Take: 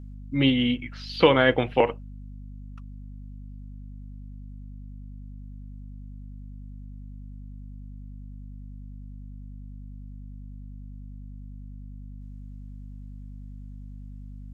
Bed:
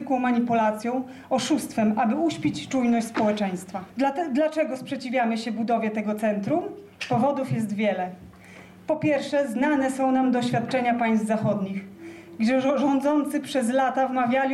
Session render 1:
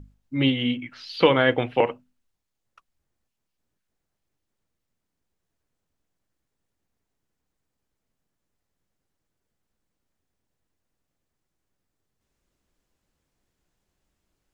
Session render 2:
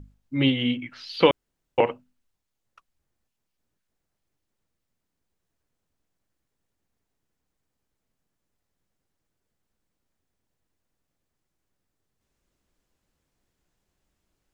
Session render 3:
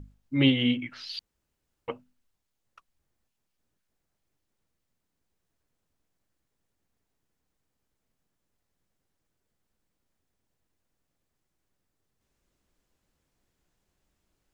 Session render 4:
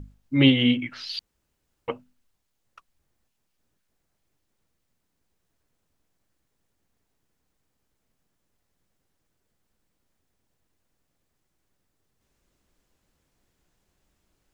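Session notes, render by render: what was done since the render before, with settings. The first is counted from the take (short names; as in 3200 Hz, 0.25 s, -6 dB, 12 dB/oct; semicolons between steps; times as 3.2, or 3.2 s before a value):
notches 50/100/150/200/250 Hz
1.31–1.78 room tone
1.19–1.88 room tone
gain +4.5 dB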